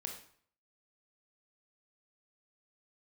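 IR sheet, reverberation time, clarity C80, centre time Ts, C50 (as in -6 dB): 0.55 s, 10.0 dB, 24 ms, 6.0 dB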